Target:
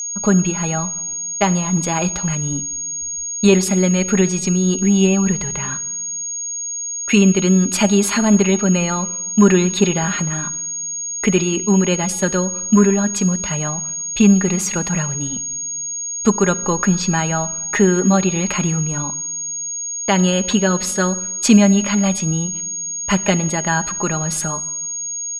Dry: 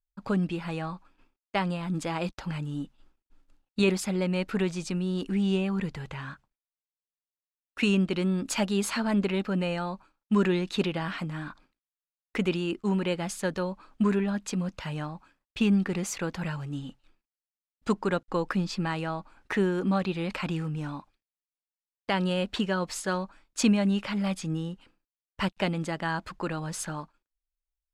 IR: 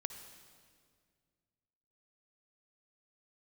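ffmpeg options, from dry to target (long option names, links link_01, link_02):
-filter_complex "[0:a]aecho=1:1:4.9:0.42,acontrast=58,atempo=1.1,aeval=exprs='val(0)+0.0501*sin(2*PI*6600*n/s)':channel_layout=same,asplit=2[link_01][link_02];[1:a]atrim=start_sample=2205,asetrate=70560,aresample=44100[link_03];[link_02][link_03]afir=irnorm=-1:irlink=0,volume=0dB[link_04];[link_01][link_04]amix=inputs=2:normalize=0"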